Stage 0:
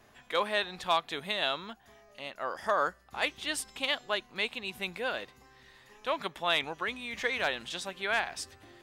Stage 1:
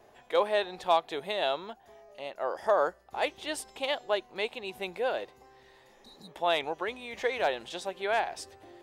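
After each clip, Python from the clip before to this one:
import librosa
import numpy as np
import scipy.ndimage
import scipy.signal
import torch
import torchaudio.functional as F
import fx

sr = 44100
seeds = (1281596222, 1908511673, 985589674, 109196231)

y = fx.spec_repair(x, sr, seeds[0], start_s=5.9, length_s=0.38, low_hz=250.0, high_hz=3700.0, source='both')
y = fx.band_shelf(y, sr, hz=550.0, db=9.5, octaves=1.7)
y = F.gain(torch.from_numpy(y), -3.5).numpy()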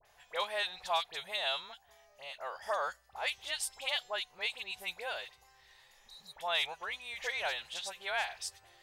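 y = fx.tone_stack(x, sr, knobs='10-0-10')
y = fx.dispersion(y, sr, late='highs', ms=54.0, hz=1800.0)
y = F.gain(torch.from_numpy(y), 3.5).numpy()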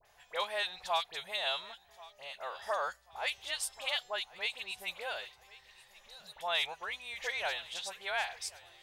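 y = fx.echo_feedback(x, sr, ms=1085, feedback_pct=34, wet_db=-21)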